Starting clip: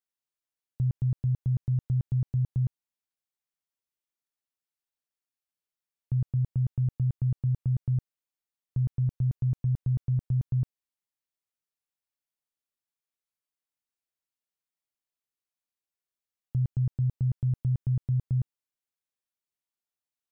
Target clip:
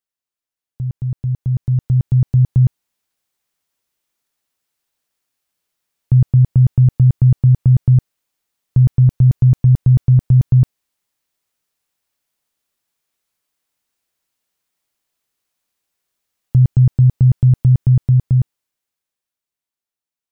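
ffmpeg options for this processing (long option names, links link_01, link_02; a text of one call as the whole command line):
ffmpeg -i in.wav -af "dynaudnorm=framelen=120:gausssize=31:maxgain=13.5dB,volume=2.5dB" out.wav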